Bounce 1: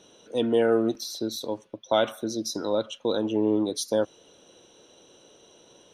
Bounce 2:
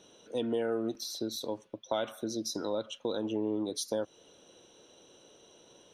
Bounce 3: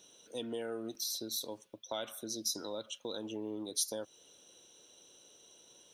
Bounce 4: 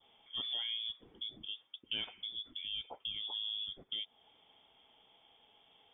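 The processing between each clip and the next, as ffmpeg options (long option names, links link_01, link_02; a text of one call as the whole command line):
ffmpeg -i in.wav -af "acompressor=threshold=-27dB:ratio=2.5,volume=-3.5dB" out.wav
ffmpeg -i in.wav -af "crystalizer=i=4:c=0,volume=-8.5dB" out.wav
ffmpeg -i in.wav -af "adynamicequalizer=threshold=0.00126:dfrequency=1200:dqfactor=0.93:tfrequency=1200:tqfactor=0.93:attack=5:release=100:ratio=0.375:range=2:mode=cutabove:tftype=bell,lowpass=frequency=3100:width_type=q:width=0.5098,lowpass=frequency=3100:width_type=q:width=0.6013,lowpass=frequency=3100:width_type=q:width=0.9,lowpass=frequency=3100:width_type=q:width=2.563,afreqshift=-3700,volume=1dB" out.wav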